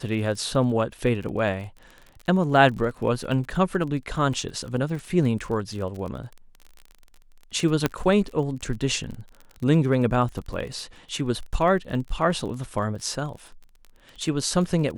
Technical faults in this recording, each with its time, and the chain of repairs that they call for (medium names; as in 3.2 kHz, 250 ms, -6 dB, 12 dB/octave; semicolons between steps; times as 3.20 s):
crackle 33 per s -33 dBFS
7.86 s: pop -7 dBFS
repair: de-click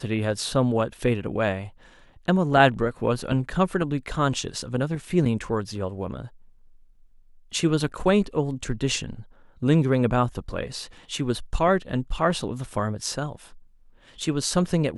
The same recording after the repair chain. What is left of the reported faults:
nothing left